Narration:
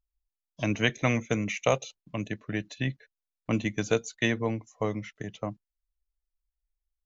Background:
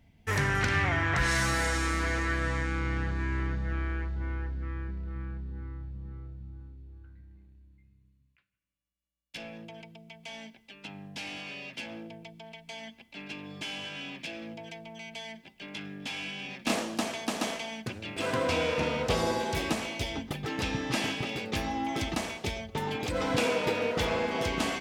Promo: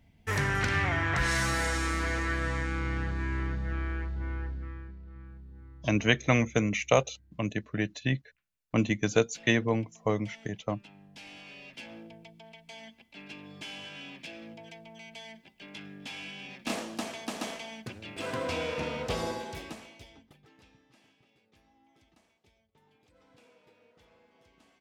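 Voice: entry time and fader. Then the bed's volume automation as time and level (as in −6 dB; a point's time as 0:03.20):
5.25 s, +1.5 dB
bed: 0:04.50 −1 dB
0:04.98 −10 dB
0:11.08 −10 dB
0:11.94 −4.5 dB
0:19.25 −4.5 dB
0:20.93 −34 dB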